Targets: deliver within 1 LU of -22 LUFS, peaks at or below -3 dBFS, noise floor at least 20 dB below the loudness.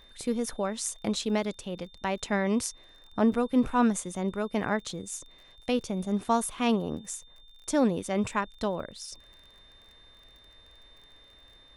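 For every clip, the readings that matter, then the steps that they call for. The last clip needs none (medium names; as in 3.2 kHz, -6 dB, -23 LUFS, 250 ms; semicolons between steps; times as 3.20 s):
tick rate 26 per s; steady tone 3.6 kHz; tone level -55 dBFS; loudness -29.5 LUFS; peak level -12.0 dBFS; loudness target -22.0 LUFS
-> de-click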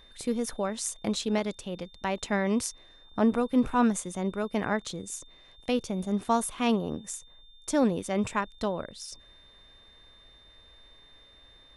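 tick rate 0 per s; steady tone 3.6 kHz; tone level -55 dBFS
-> band-stop 3.6 kHz, Q 30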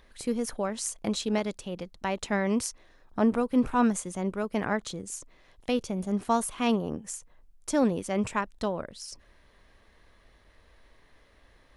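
steady tone not found; loudness -29.5 LUFS; peak level -12.0 dBFS; loudness target -22.0 LUFS
-> trim +7.5 dB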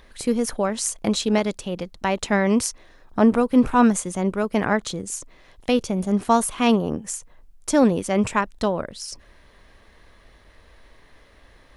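loudness -22.0 LUFS; peak level -4.5 dBFS; noise floor -53 dBFS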